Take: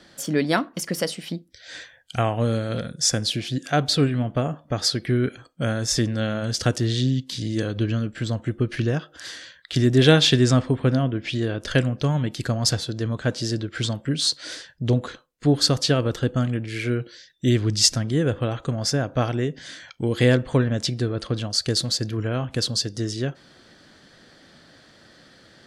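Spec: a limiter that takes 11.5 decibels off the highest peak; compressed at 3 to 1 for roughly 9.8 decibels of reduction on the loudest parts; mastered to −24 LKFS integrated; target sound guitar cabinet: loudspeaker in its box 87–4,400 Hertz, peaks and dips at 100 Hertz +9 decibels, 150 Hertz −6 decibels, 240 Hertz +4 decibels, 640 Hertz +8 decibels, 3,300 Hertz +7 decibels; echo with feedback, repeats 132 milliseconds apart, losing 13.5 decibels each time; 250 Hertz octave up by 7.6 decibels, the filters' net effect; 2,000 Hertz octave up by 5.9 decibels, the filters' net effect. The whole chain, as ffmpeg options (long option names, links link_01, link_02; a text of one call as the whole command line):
ffmpeg -i in.wav -af "equalizer=frequency=250:width_type=o:gain=6,equalizer=frequency=2000:width_type=o:gain=7,acompressor=threshold=-22dB:ratio=3,alimiter=limit=-17.5dB:level=0:latency=1,highpass=87,equalizer=frequency=100:width_type=q:width=4:gain=9,equalizer=frequency=150:width_type=q:width=4:gain=-6,equalizer=frequency=240:width_type=q:width=4:gain=4,equalizer=frequency=640:width_type=q:width=4:gain=8,equalizer=frequency=3300:width_type=q:width=4:gain=7,lowpass=frequency=4400:width=0.5412,lowpass=frequency=4400:width=1.3066,aecho=1:1:132|264:0.211|0.0444,volume=2.5dB" out.wav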